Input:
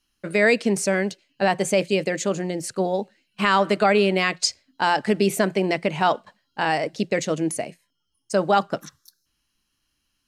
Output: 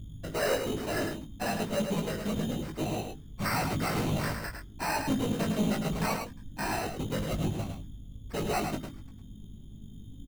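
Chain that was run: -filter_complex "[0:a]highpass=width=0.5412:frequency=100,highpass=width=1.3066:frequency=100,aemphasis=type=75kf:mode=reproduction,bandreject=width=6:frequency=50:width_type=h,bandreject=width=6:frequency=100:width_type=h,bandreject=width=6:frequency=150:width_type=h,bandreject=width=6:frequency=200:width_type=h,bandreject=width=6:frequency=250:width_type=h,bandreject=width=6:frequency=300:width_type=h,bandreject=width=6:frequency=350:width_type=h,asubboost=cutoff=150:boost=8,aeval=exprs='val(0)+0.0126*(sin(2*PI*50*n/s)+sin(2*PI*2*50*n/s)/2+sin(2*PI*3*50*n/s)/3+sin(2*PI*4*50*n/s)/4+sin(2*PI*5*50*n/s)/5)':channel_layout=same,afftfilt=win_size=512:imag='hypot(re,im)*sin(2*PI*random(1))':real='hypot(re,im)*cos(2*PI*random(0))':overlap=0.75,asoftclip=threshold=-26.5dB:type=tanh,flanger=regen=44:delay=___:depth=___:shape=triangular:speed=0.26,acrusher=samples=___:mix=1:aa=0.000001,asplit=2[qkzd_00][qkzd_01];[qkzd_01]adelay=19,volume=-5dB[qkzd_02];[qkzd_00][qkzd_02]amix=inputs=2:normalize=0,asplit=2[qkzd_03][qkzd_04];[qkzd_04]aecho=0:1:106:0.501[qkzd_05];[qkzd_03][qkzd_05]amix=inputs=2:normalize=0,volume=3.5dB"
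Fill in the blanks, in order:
0.7, 4.5, 13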